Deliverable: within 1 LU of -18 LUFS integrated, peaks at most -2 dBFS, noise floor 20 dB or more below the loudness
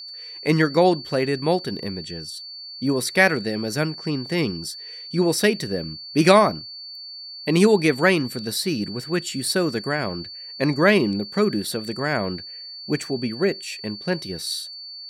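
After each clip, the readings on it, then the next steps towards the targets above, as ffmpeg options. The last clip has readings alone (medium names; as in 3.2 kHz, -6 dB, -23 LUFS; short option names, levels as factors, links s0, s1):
steady tone 4.5 kHz; tone level -35 dBFS; loudness -22.5 LUFS; peak level -1.0 dBFS; loudness target -18.0 LUFS
-> -af "bandreject=f=4500:w=30"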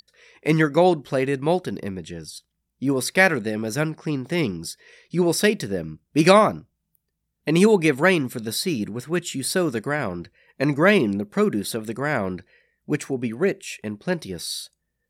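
steady tone not found; loudness -22.5 LUFS; peak level -1.5 dBFS; loudness target -18.0 LUFS
-> -af "volume=1.68,alimiter=limit=0.794:level=0:latency=1"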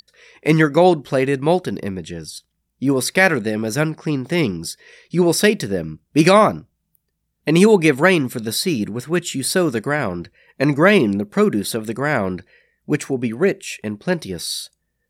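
loudness -18.5 LUFS; peak level -2.0 dBFS; noise floor -73 dBFS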